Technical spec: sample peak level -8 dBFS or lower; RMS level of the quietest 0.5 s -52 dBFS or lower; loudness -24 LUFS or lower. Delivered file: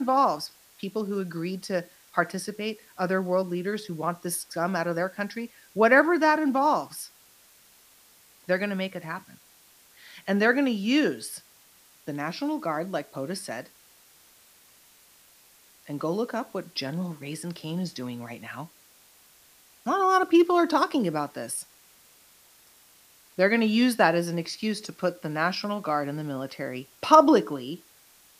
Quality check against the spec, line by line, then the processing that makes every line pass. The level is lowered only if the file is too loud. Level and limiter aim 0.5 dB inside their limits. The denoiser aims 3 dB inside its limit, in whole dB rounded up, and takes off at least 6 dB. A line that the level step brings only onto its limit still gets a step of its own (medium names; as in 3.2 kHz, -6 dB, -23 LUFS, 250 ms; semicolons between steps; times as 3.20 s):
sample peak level -3.5 dBFS: fail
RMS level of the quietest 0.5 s -57 dBFS: pass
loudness -26.0 LUFS: pass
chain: peak limiter -8.5 dBFS